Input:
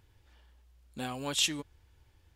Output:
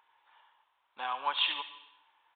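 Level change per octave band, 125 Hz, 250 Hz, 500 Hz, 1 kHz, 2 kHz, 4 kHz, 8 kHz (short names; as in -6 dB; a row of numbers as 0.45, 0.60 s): under -30 dB, -20.5 dB, -6.5 dB, +9.0 dB, +2.5 dB, +0.5 dB, under -40 dB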